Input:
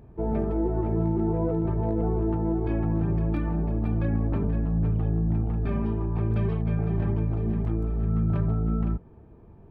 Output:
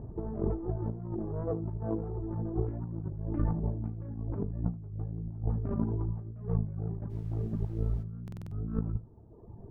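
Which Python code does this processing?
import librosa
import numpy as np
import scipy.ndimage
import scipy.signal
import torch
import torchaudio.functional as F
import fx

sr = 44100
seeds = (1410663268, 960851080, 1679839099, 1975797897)

y = fx.tracing_dist(x, sr, depth_ms=0.32)
y = fx.highpass(y, sr, hz=43.0, slope=24, at=(1.43, 2.21))
y = fx.dereverb_blind(y, sr, rt60_s=1.2)
y = scipy.signal.sosfilt(scipy.signal.bessel(4, 840.0, 'lowpass', norm='mag', fs=sr, output='sos'), y)
y = fx.peak_eq(y, sr, hz=110.0, db=5.0, octaves=0.24)
y = fx.over_compress(y, sr, threshold_db=-32.0, ratio=-0.5)
y = fx.dmg_noise_colour(y, sr, seeds[0], colour='brown', level_db=-52.0, at=(7.09, 8.02), fade=0.02)
y = y + 10.0 ** (-18.0 / 20.0) * np.pad(y, (int(80 * sr / 1000.0), 0))[:len(y)]
y = fx.buffer_glitch(y, sr, at_s=(8.24,), block=2048, repeats=5)
y = fx.record_warp(y, sr, rpm=33.33, depth_cents=100.0)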